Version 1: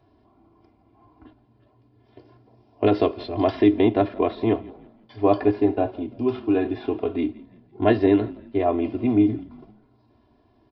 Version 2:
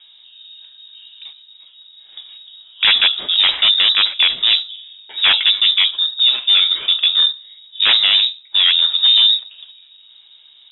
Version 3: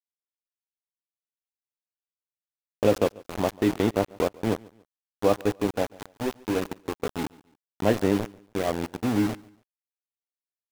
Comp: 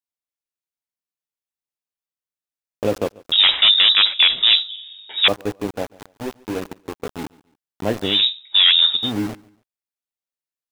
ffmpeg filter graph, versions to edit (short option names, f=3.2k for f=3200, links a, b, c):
-filter_complex "[1:a]asplit=2[a][b];[2:a]asplit=3[c][d][e];[c]atrim=end=3.322[f];[a]atrim=start=3.318:end=5.282[g];[d]atrim=start=5.278:end=8.26[h];[b]atrim=start=8.02:end=9.12[i];[e]atrim=start=8.88[j];[f][g]acrossfade=d=0.004:c1=hsin:c2=hsin[k];[k][h]acrossfade=d=0.004:c1=hsin:c2=hsin[l];[l][i]acrossfade=d=0.24:c1=tri:c2=tri[m];[m][j]acrossfade=d=0.24:c1=tri:c2=tri"